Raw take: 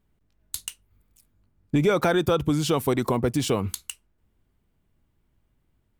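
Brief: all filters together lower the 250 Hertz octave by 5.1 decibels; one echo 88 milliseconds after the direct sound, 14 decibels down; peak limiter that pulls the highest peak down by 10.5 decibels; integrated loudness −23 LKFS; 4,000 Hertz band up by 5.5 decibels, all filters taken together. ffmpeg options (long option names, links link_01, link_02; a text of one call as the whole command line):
ffmpeg -i in.wav -af "equalizer=frequency=250:width_type=o:gain=-7.5,equalizer=frequency=4000:width_type=o:gain=7,alimiter=limit=-21dB:level=0:latency=1,aecho=1:1:88:0.2,volume=8dB" out.wav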